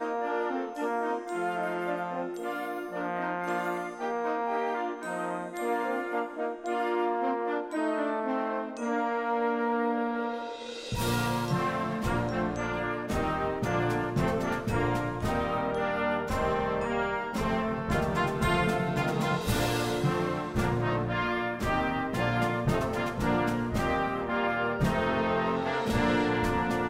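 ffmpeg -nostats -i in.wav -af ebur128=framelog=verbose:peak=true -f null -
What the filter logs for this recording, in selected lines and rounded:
Integrated loudness:
  I:         -29.7 LUFS
  Threshold: -39.7 LUFS
Loudness range:
  LRA:         3.8 LU
  Threshold: -49.7 LUFS
  LRA low:   -32.1 LUFS
  LRA high:  -28.3 LUFS
True peak:
  Peak:      -14.3 dBFS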